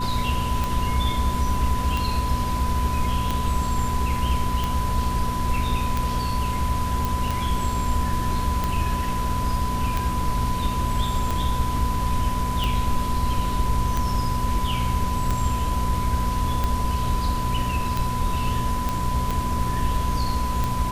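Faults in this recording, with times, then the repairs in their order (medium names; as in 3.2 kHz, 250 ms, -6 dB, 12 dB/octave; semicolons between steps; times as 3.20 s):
hum 60 Hz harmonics 4 -29 dBFS
tick 45 rpm
whine 1 kHz -27 dBFS
7.05 s: pop
18.89 s: pop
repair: de-click; de-hum 60 Hz, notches 4; band-stop 1 kHz, Q 30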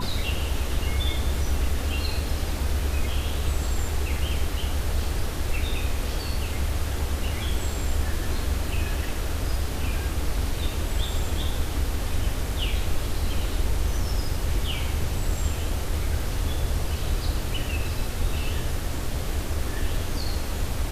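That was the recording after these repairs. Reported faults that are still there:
nothing left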